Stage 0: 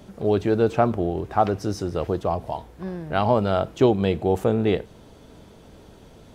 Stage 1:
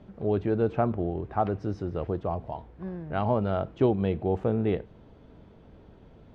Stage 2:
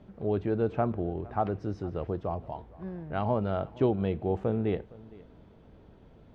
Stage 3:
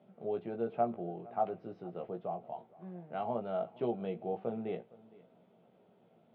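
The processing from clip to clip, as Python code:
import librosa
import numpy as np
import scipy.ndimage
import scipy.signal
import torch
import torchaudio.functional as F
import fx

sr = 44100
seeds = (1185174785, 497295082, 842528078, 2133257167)

y1 = scipy.signal.sosfilt(scipy.signal.butter(2, 2600.0, 'lowpass', fs=sr, output='sos'), x)
y1 = fx.low_shelf(y1, sr, hz=290.0, db=5.0)
y1 = y1 * 10.0 ** (-7.5 / 20.0)
y2 = y1 + 10.0 ** (-22.0 / 20.0) * np.pad(y1, (int(462 * sr / 1000.0), 0))[:len(y1)]
y2 = y2 * 10.0 ** (-2.5 / 20.0)
y3 = fx.cabinet(y2, sr, low_hz=170.0, low_slope=24, high_hz=3600.0, hz=(290.0, 700.0, 1000.0, 1700.0), db=(-9, 6, -5, -7))
y3 = fx.doubler(y3, sr, ms=17.0, db=-5)
y3 = y3 * 10.0 ** (-7.5 / 20.0)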